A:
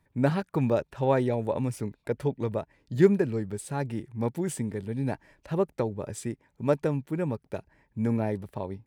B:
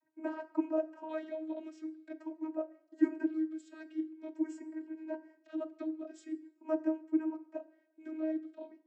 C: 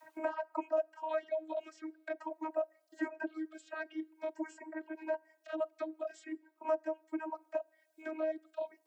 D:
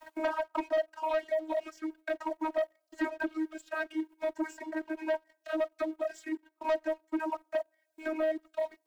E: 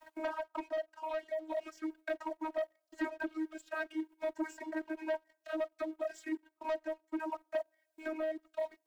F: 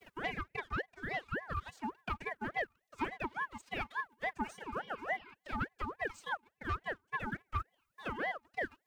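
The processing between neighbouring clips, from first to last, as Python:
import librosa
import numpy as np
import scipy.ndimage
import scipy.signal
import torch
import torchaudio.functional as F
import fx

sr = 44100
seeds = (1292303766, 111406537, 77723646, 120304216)

y1 = fx.filter_lfo_notch(x, sr, shape='square', hz=0.46, low_hz=870.0, high_hz=3600.0, q=1.2)
y1 = fx.vocoder(y1, sr, bands=32, carrier='saw', carrier_hz=315.0)
y1 = fx.rev_double_slope(y1, sr, seeds[0], early_s=0.59, late_s=1.5, knee_db=-18, drr_db=11.5)
y1 = y1 * librosa.db_to_amplitude(-8.0)
y2 = fx.dereverb_blind(y1, sr, rt60_s=0.72)
y2 = fx.low_shelf_res(y2, sr, hz=450.0, db=-12.5, q=1.5)
y2 = fx.band_squash(y2, sr, depth_pct=70)
y2 = y2 * librosa.db_to_amplitude(5.0)
y3 = fx.leveller(y2, sr, passes=2)
y4 = fx.rider(y3, sr, range_db=5, speed_s=0.5)
y4 = y4 * librosa.db_to_amplitude(-5.0)
y5 = fx.spec_repair(y4, sr, seeds[1], start_s=4.63, length_s=0.68, low_hz=750.0, high_hz=4400.0, source='before')
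y5 = fx.ring_lfo(y5, sr, carrier_hz=970.0, swing_pct=45, hz=3.5)
y5 = y5 * librosa.db_to_amplitude(2.0)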